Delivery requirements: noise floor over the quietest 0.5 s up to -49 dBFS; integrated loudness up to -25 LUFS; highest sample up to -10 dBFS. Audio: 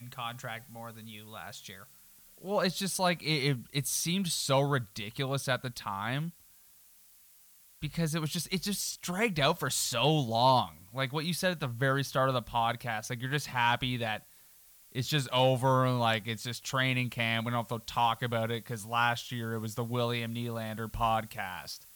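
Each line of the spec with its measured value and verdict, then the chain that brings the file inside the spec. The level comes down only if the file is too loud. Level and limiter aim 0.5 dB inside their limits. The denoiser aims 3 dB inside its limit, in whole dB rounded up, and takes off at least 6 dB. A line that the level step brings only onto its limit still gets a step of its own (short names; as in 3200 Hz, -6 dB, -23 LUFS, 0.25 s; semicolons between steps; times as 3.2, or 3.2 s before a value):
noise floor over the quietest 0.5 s -59 dBFS: OK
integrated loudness -31.0 LUFS: OK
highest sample -13.0 dBFS: OK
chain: none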